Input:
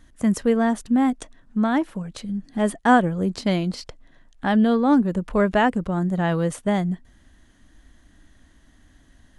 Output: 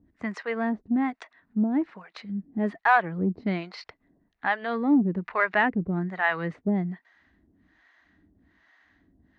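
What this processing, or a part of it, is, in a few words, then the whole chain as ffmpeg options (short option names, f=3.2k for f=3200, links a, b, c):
guitar amplifier with harmonic tremolo: -filter_complex "[0:a]asettb=1/sr,asplit=3[a][b][c];[a]atrim=end=5.254[d];[b]atrim=start=5.25:end=6.68,asetpts=PTS-STARTPTS,afade=t=in:d=0.004:c=qsin,afade=t=out:st=1.426:d=0.004:c=qsin,equalizer=f=2k:t=o:w=1.3:g=4[e];[c]atrim=start=6.676[f];[d][e]acrossfade=d=0.004:c1=hsin:c2=qsin[g];[g][f]acrossfade=d=0.004:c1=qsin:c2=hsin,acrossover=split=550[h][i];[h]aeval=exprs='val(0)*(1-1/2+1/2*cos(2*PI*1.2*n/s))':c=same[j];[i]aeval=exprs='val(0)*(1-1/2-1/2*cos(2*PI*1.2*n/s))':c=same[k];[j][k]amix=inputs=2:normalize=0,asoftclip=type=tanh:threshold=-11dB,highpass=110,equalizer=f=130:t=q:w=4:g=-10,equalizer=f=240:t=q:w=4:g=-4,equalizer=f=540:t=q:w=4:g=-8,equalizer=f=2k:t=q:w=4:g=6,equalizer=f=3.2k:t=q:w=4:g=-9,lowpass=f=3.9k:w=0.5412,lowpass=f=3.9k:w=1.3066,volume=2dB"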